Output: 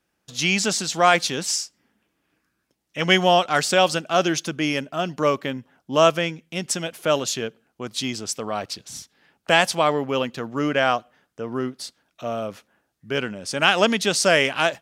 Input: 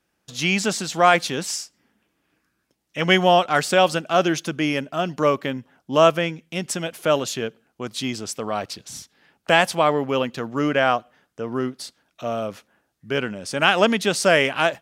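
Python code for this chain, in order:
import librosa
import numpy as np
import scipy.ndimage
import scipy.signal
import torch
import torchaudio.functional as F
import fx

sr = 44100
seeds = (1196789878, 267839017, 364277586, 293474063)

y = fx.dynamic_eq(x, sr, hz=5700.0, q=0.74, threshold_db=-36.0, ratio=4.0, max_db=6)
y = y * librosa.db_to_amplitude(-1.5)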